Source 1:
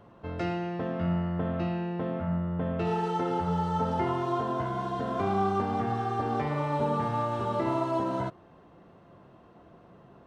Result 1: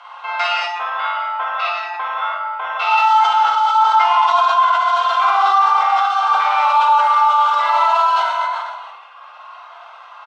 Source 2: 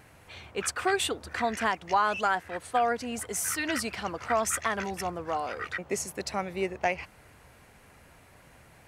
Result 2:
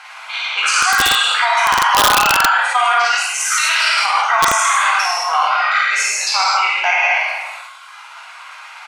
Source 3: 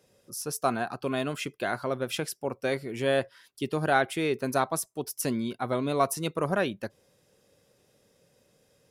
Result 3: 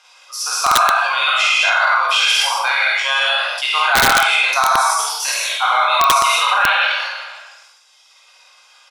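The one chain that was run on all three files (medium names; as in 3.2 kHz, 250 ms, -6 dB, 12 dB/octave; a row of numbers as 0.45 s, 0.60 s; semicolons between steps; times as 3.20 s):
spectral sustain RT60 1.26 s; steep high-pass 880 Hz 36 dB/octave; tremolo 17 Hz, depth 31%; early reflections 24 ms -13 dB, 49 ms -6 dB; in parallel at 0 dB: compression 20:1, threshold -42 dBFS; on the sum: reverb removal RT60 1.7 s; low-pass 4.6 kHz 12 dB/octave; band-stop 1.8 kHz, Q 5.1; gated-style reverb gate 240 ms flat, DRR -4 dB; integer overflow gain 15.5 dB; loudness maximiser +20 dB; decay stretcher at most 39 dB/s; trim -4.5 dB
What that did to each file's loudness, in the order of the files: +14.5 LU, +16.5 LU, +15.5 LU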